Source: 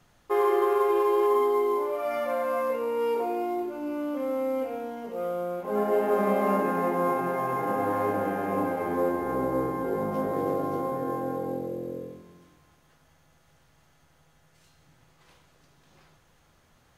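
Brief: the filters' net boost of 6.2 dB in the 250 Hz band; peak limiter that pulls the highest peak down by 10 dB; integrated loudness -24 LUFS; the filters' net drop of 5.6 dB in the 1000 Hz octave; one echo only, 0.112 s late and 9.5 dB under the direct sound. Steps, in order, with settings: bell 250 Hz +8.5 dB; bell 1000 Hz -7.5 dB; limiter -21 dBFS; echo 0.112 s -9.5 dB; gain +4.5 dB

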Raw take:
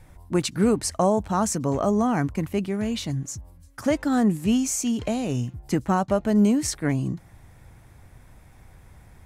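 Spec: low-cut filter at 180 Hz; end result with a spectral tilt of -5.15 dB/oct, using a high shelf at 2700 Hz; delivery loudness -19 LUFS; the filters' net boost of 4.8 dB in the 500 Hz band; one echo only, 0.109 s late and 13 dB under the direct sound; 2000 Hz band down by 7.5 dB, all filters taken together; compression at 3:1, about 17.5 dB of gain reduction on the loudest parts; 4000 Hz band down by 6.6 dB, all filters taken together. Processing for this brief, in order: HPF 180 Hz; bell 500 Hz +7 dB; bell 2000 Hz -9 dB; high shelf 2700 Hz -3.5 dB; bell 4000 Hz -3 dB; compressor 3:1, threshold -38 dBFS; echo 0.109 s -13 dB; gain +18.5 dB

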